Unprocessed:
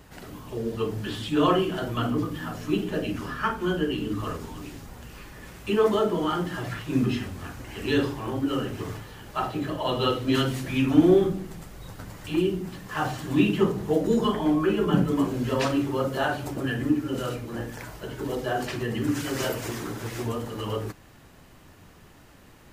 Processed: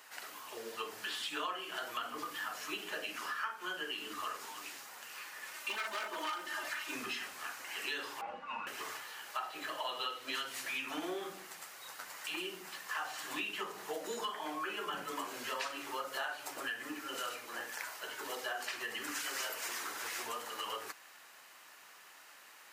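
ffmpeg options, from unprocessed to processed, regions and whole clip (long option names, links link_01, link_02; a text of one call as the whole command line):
ffmpeg -i in.wav -filter_complex "[0:a]asettb=1/sr,asplit=3[link_01][link_02][link_03];[link_01]atrim=end=5.534[link_04];[link_02]atrim=start=5.53:end=6.95,asetpts=PTS-STARTPTS,afade=type=in:duration=0.004:curve=qsin,afade=type=out:start_time=1.416:duration=0.004:curve=qsin,aeval=exprs='0.0891*(abs(mod(val(0)/0.0891+3,4)-2)-1)':channel_layout=same,aecho=1:1:3.3:0.69,atrim=end_sample=62622[link_05];[link_03]atrim=start=6.946[link_06];[link_04][link_05]acrossfade=duration=0.004:curve1=hsin:curve2=qsin[link_07];[link_07][link_06]acrossfade=duration=0.004:curve1=qsin:curve2=hsin,asettb=1/sr,asplit=3[link_08][link_09][link_10];[link_08]atrim=end=8.214[link_11];[link_09]atrim=start=8.21:end=8.67,asetpts=PTS-STARTPTS,afade=type=in:duration=0.004:curve=qsin,afade=type=out:start_time=0.456:duration=0.004:curve=qsin,lowpass=1900,aecho=1:1:3.5:0.56,atrim=end_sample=20286,afreqshift=-300[link_12];[link_10]atrim=start=8.666[link_13];[link_11][link_12]acrossfade=duration=0.004:curve1=hsin:curve2=qsin[link_14];[link_14][link_13]acrossfade=duration=0.004:curve1=qsin:curve2=hsin,highpass=1100,equalizer=frequency=3400:width_type=o:width=0.27:gain=-3,acompressor=threshold=-38dB:ratio=6,volume=2dB" out.wav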